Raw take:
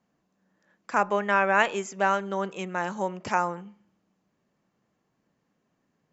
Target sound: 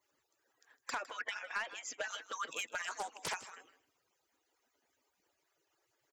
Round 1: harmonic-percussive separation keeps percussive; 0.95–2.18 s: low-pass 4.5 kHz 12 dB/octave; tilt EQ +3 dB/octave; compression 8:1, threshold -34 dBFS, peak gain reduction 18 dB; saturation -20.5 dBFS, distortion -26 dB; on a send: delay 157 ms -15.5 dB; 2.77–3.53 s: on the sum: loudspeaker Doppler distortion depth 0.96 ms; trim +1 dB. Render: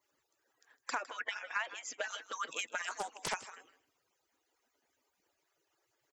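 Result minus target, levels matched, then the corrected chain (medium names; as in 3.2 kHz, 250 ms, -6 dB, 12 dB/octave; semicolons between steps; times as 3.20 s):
saturation: distortion -13 dB
harmonic-percussive separation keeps percussive; 0.95–2.18 s: low-pass 4.5 kHz 12 dB/octave; tilt EQ +3 dB/octave; compression 8:1, threshold -34 dBFS, peak gain reduction 18 dB; saturation -30 dBFS, distortion -13 dB; on a send: delay 157 ms -15.5 dB; 2.77–3.53 s: on the sum: loudspeaker Doppler distortion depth 0.96 ms; trim +1 dB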